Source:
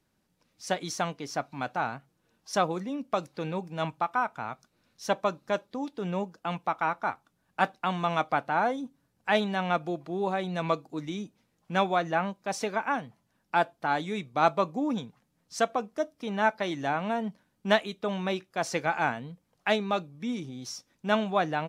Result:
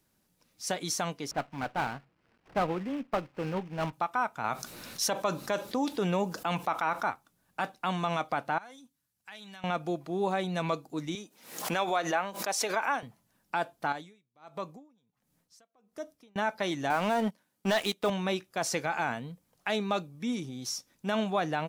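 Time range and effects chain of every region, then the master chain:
1.31–3.93 s: CVSD coder 16 kbps + sliding maximum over 5 samples
4.44–7.03 s: bass shelf 200 Hz -6 dB + level flattener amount 50%
8.58–9.64 s: amplifier tone stack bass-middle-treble 5-5-5 + compression 4:1, threshold -44 dBFS
11.15–13.03 s: Bessel high-pass 450 Hz + swell ahead of each attack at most 97 dB/s
13.92–16.36 s: compression 2:1, threshold -38 dBFS + logarithmic tremolo 1.4 Hz, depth 34 dB
16.90–18.10 s: high-pass 270 Hz 6 dB/octave + waveshaping leveller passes 2
whole clip: treble shelf 7.4 kHz +11.5 dB; peak limiter -17.5 dBFS

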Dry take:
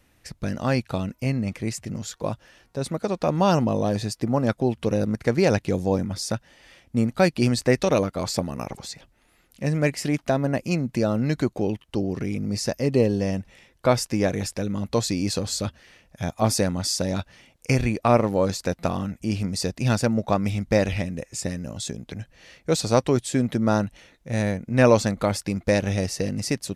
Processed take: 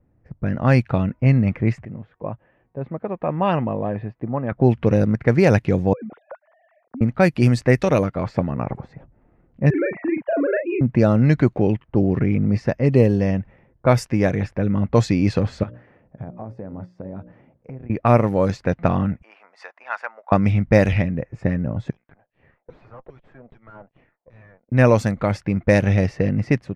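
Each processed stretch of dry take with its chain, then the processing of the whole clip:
1.85–4.52 s: four-pole ladder low-pass 3.7 kHz, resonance 30% + tilt EQ +2 dB/octave + band-stop 1.4 kHz, Q 11
5.93–7.01 s: formants replaced by sine waves + compression 5:1, threshold -37 dBFS
9.70–10.81 s: formants replaced by sine waves + compression 12:1, threshold -25 dBFS + doubling 39 ms -5 dB
15.63–17.90 s: high-pass 170 Hz 6 dB/octave + hum notches 60/120/180/240/300/360/420/480/540/600 Hz + compression 10:1, threshold -37 dBFS
19.22–20.32 s: high-pass 940 Hz 24 dB/octave + treble shelf 6.6 kHz -3 dB
21.90–24.72 s: frequency weighting ITU-R 468 + LFO band-pass saw down 2.5 Hz 500–4600 Hz + valve stage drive 41 dB, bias 0.7
whole clip: level-controlled noise filter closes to 620 Hz, open at -15.5 dBFS; ten-band graphic EQ 125 Hz +6 dB, 2 kHz +4 dB, 4 kHz -7 dB, 8 kHz -6 dB; level rider gain up to 8.5 dB; trim -1 dB

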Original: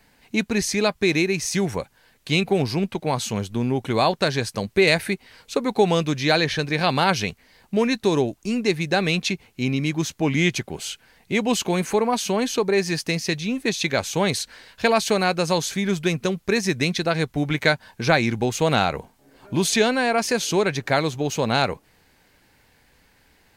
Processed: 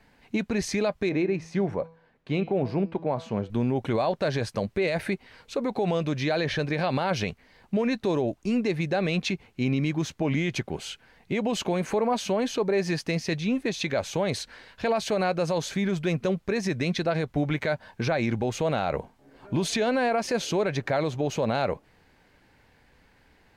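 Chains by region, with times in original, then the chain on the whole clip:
1.09–3.50 s: low-pass 1 kHz 6 dB/octave + bass shelf 92 Hz -11 dB + de-hum 163.9 Hz, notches 38
whole clip: low-pass 2.4 kHz 6 dB/octave; dynamic bell 590 Hz, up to +7 dB, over -37 dBFS, Q 3.1; peak limiter -17 dBFS

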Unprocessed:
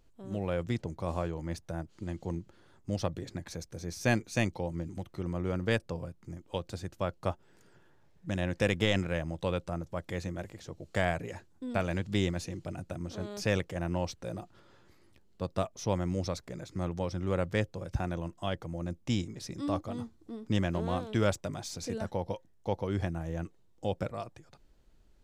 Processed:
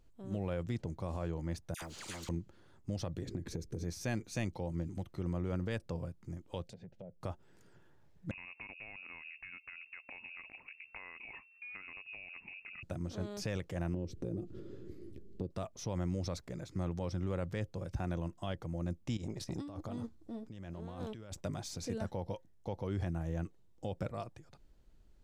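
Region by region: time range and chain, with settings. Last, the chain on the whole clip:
1.74–2.29 s: phase dispersion lows, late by 78 ms, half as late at 1.4 kHz + spectrum-flattening compressor 4:1
3.27–3.84 s: resonant low shelf 530 Hz +8 dB, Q 3 + compression, threshold -33 dBFS
6.64–7.21 s: low-pass that closes with the level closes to 560 Hz, closed at -32.5 dBFS + static phaser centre 310 Hz, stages 6 + compression 2.5:1, threshold -47 dBFS
8.31–12.83 s: compression 16:1, threshold -40 dBFS + frequency inversion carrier 2.7 kHz
13.94–15.51 s: resonant low shelf 570 Hz +13 dB, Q 3 + compression 4:1, threshold -35 dBFS
19.17–21.42 s: compressor with a negative ratio -40 dBFS + transformer saturation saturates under 370 Hz
whole clip: bass shelf 260 Hz +4.5 dB; peak limiter -22.5 dBFS; trim -4 dB

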